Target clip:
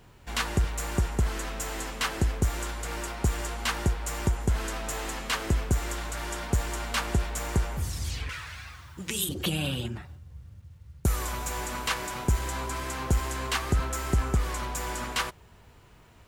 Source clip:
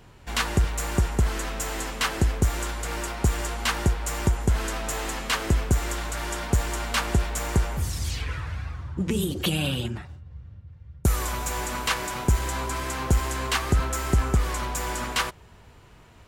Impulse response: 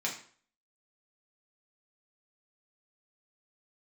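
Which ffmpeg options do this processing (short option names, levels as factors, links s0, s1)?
-filter_complex "[0:a]acrusher=bits=10:mix=0:aa=0.000001,asettb=1/sr,asplit=3[s0][s1][s2];[s0]atrim=end=8.294[s3];[s1]atrim=start=8.29:end=9.29,asetpts=PTS-STARTPTS,afade=t=in:d=0.004:c=qsin,afade=t=out:st=0.996:d=0.004:c=qsin,tiltshelf=f=1100:g=-10[s4];[s2]atrim=start=9.286[s5];[s3][s4]acrossfade=d=0.004:c1=hsin:c2=qsin[s6];[s6][s5]acrossfade=d=0.004:c1=qsin:c2=hsin,volume=0.668"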